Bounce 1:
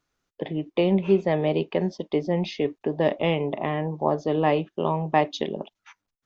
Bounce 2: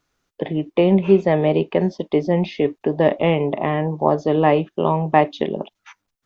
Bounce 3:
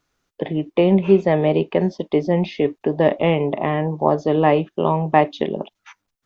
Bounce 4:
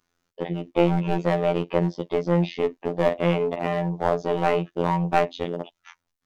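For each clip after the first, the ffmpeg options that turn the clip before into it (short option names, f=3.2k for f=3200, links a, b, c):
-filter_complex "[0:a]acrossover=split=2900[a][b];[b]acompressor=threshold=-49dB:ratio=4:attack=1:release=60[c];[a][c]amix=inputs=2:normalize=0,volume=6dB"
-af anull
-af "aeval=exprs='0.891*(cos(1*acos(clip(val(0)/0.891,-1,1)))-cos(1*PI/2))+0.0178*(cos(6*acos(clip(val(0)/0.891,-1,1)))-cos(6*PI/2))':c=same,aeval=exprs='clip(val(0),-1,0.178)':c=same,afftfilt=real='hypot(re,im)*cos(PI*b)':imag='0':win_size=2048:overlap=0.75"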